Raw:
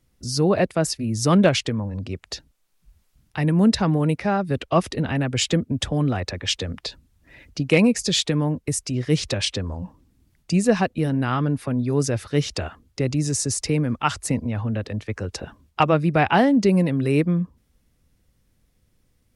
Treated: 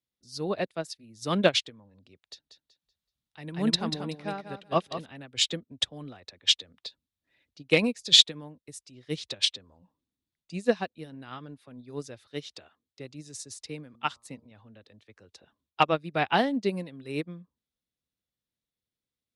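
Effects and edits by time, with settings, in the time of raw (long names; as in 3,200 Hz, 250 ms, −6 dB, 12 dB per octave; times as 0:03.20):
0:02.25–0:05.06: repeating echo 189 ms, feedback 30%, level −4.5 dB
0:12.27–0:13.00: high-pass filter 130 Hz 6 dB per octave
0:13.88–0:14.51: hum removal 117 Hz, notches 11
whole clip: high-pass filter 240 Hz 6 dB per octave; parametric band 3,700 Hz +10 dB 0.6 octaves; expander for the loud parts 2.5 to 1, over −28 dBFS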